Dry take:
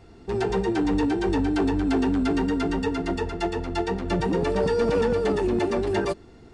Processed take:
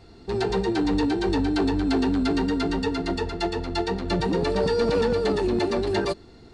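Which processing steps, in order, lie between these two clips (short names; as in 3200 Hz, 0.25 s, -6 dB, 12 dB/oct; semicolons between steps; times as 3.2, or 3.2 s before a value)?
bell 4200 Hz +10.5 dB 0.36 oct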